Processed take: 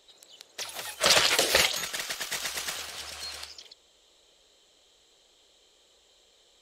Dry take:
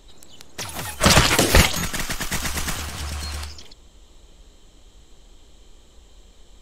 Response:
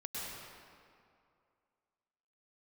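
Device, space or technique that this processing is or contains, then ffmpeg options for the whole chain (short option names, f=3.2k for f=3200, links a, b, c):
filter by subtraction: -filter_complex "[0:a]asplit=2[a][b];[b]lowpass=880,volume=-1[c];[a][c]amix=inputs=2:normalize=0,equalizer=f=125:t=o:w=1:g=-3,equalizer=f=250:t=o:w=1:g=-6,equalizer=f=500:t=o:w=1:g=5,equalizer=f=1k:t=o:w=1:g=-6,equalizer=f=4k:t=o:w=1:g=5,volume=-7dB"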